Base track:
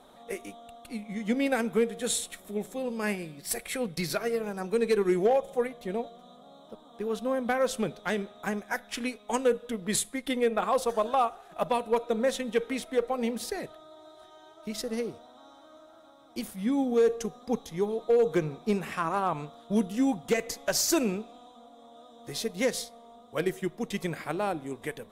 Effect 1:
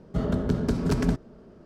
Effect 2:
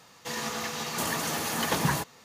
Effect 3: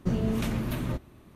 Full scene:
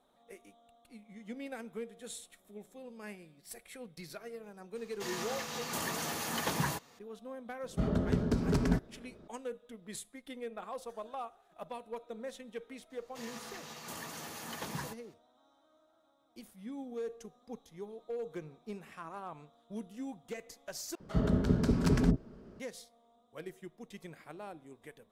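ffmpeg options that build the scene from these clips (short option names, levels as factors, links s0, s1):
-filter_complex "[2:a]asplit=2[s0][s1];[1:a]asplit=2[s2][s3];[0:a]volume=0.158[s4];[s3]acrossover=split=640[s5][s6];[s5]adelay=50[s7];[s7][s6]amix=inputs=2:normalize=0[s8];[s4]asplit=2[s9][s10];[s9]atrim=end=20.954[s11];[s8]atrim=end=1.65,asetpts=PTS-STARTPTS,volume=0.75[s12];[s10]atrim=start=22.596[s13];[s0]atrim=end=2.24,asetpts=PTS-STARTPTS,volume=0.473,afade=t=in:d=0.004:c=hsin,afade=t=out:st=2.236:d=0.004:c=hsin,adelay=4750[s14];[s2]atrim=end=1.65,asetpts=PTS-STARTPTS,volume=0.562,afade=t=in:d=0.004:c=hsin,afade=t=out:st=1.646:d=0.004:c=hsin,adelay=7630[s15];[s1]atrim=end=2.24,asetpts=PTS-STARTPTS,volume=0.2,afade=t=in:d=0.004:c=hsin,afade=t=out:st=2.236:d=0.004:c=hsin,adelay=12900[s16];[s11][s12]acrossfade=d=0.004:c1=hsin:c2=hsin[s17];[s17][s13]acrossfade=d=0.004:c1=hsin:c2=hsin[s18];[s18][s14][s15][s16]amix=inputs=4:normalize=0"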